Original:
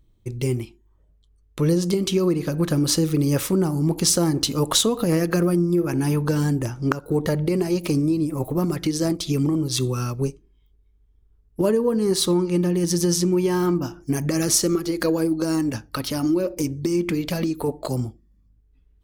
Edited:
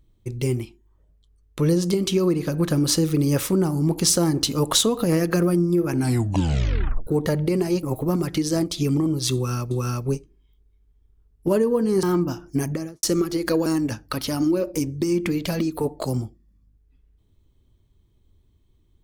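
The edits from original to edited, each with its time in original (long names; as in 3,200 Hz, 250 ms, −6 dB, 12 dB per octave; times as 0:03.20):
0:05.95: tape stop 1.12 s
0:07.83–0:08.32: remove
0:09.84–0:10.20: repeat, 2 plays
0:12.16–0:13.57: remove
0:14.11–0:14.57: fade out and dull
0:15.20–0:15.49: remove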